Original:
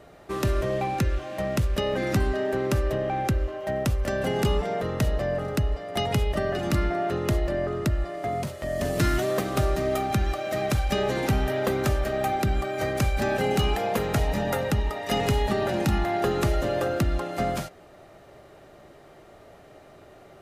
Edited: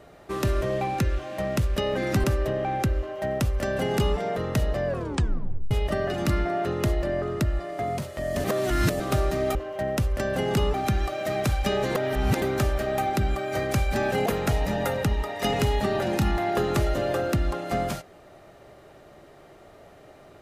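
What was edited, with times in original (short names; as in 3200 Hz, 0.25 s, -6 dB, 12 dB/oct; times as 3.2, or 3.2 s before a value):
2.24–2.69 cut
3.43–4.62 copy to 10
5.32 tape stop 0.84 s
8.89–9.45 reverse
11.21–11.68 reverse
13.52–13.93 cut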